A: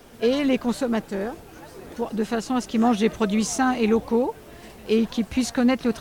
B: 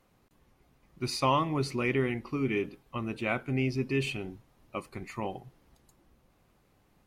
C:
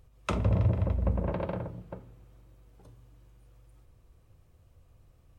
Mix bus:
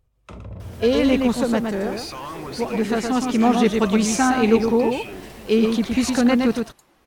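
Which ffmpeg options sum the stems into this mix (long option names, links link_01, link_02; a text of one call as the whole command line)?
ffmpeg -i stem1.wav -i stem2.wav -i stem3.wav -filter_complex "[0:a]adelay=600,volume=2.5dB,asplit=2[link_01][link_02];[link_02]volume=-4.5dB[link_03];[1:a]alimiter=level_in=3dB:limit=-24dB:level=0:latency=1,volume=-3dB,asplit=2[link_04][link_05];[link_05]highpass=frequency=720:poles=1,volume=17dB,asoftclip=type=tanh:threshold=-20dB[link_06];[link_04][link_06]amix=inputs=2:normalize=0,lowpass=frequency=7600:poles=1,volume=-6dB,adelay=900,volume=0.5dB[link_07];[2:a]volume=-8dB,asplit=2[link_08][link_09];[link_09]volume=-14dB[link_10];[link_07][link_08]amix=inputs=2:normalize=0,alimiter=level_in=4.5dB:limit=-24dB:level=0:latency=1:release=40,volume=-4.5dB,volume=0dB[link_11];[link_03][link_10]amix=inputs=2:normalize=0,aecho=0:1:116:1[link_12];[link_01][link_11][link_12]amix=inputs=3:normalize=0" out.wav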